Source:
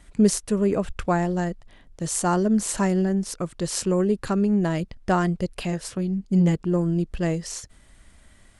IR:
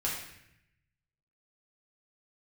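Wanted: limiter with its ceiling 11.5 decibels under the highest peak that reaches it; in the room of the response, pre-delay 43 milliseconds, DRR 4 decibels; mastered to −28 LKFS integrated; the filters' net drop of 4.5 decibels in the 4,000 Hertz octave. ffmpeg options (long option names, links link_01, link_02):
-filter_complex "[0:a]equalizer=frequency=4000:width_type=o:gain=-6.5,alimiter=limit=-18.5dB:level=0:latency=1,asplit=2[link_01][link_02];[1:a]atrim=start_sample=2205,adelay=43[link_03];[link_02][link_03]afir=irnorm=-1:irlink=0,volume=-9.5dB[link_04];[link_01][link_04]amix=inputs=2:normalize=0,volume=-1.5dB"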